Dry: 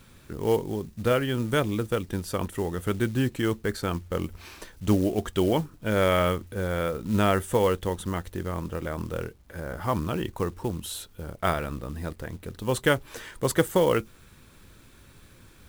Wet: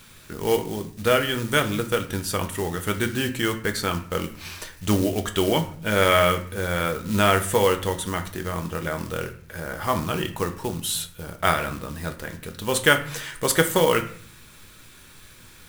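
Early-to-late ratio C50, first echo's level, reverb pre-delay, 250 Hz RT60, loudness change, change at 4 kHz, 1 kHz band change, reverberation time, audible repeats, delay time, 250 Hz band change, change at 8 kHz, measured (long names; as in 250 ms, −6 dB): 12.5 dB, no echo audible, 5 ms, 0.80 s, +3.5 dB, +9.0 dB, +5.5 dB, 0.50 s, no echo audible, no echo audible, +1.0 dB, +9.5 dB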